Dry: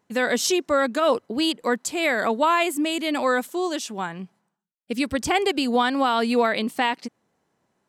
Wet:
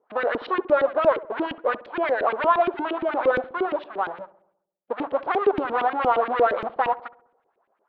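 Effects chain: square wave that keeps the level; steep low-pass 4 kHz 48 dB/octave; high-order bell 760 Hz +10.5 dB 2.3 oct; in parallel at -1.5 dB: peak limiter -8.5 dBFS, peak gain reduction 10.5 dB; on the sum: bass shelf 180 Hz -7.5 dB; LFO band-pass saw up 8.6 Hz 300–2700 Hz; on a send: filtered feedback delay 67 ms, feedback 60%, low-pass 1.2 kHz, level -17 dB; on the sum: trim -8.5 dB

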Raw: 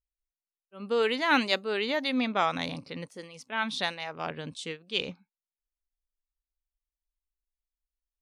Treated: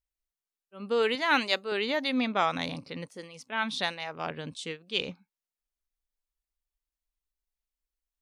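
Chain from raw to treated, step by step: 1.15–1.72 s: bass shelf 230 Hz -10.5 dB

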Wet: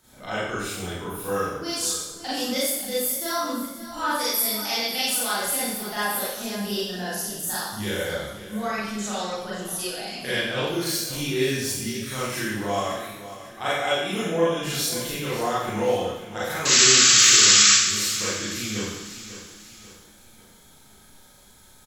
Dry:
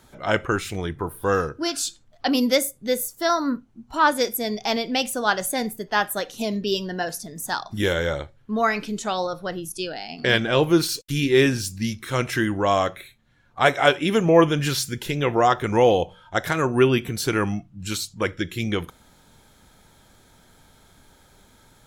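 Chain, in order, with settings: 4.18–5.28 s: tilt shelf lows -5 dB, about 800 Hz; 16.65–17.72 s: painted sound noise 1.1–7.8 kHz -10 dBFS; compression 1.5:1, threshold -31 dBFS, peak gain reduction 9 dB; treble shelf 4.3 kHz +9.5 dB; on a send: feedback delay 542 ms, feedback 46%, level -14 dB; on the sum: Schroeder reverb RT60 0.89 s, combs from 30 ms, DRR -9.5 dB; trim -11 dB

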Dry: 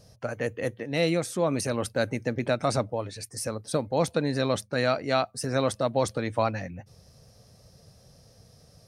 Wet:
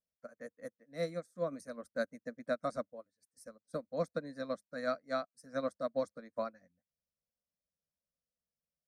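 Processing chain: static phaser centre 570 Hz, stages 8; upward expansion 2.5:1, over -46 dBFS; trim -5.5 dB

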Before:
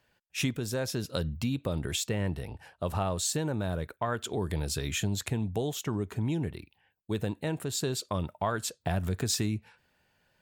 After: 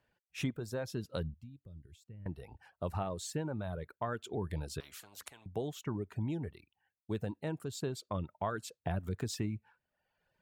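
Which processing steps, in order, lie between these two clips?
treble shelf 2.9 kHz -9.5 dB; reverb removal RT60 0.83 s; 1.34–2.26 s: amplifier tone stack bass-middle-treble 10-0-1; 4.80–5.46 s: spectrum-flattening compressor 10:1; trim -4.5 dB

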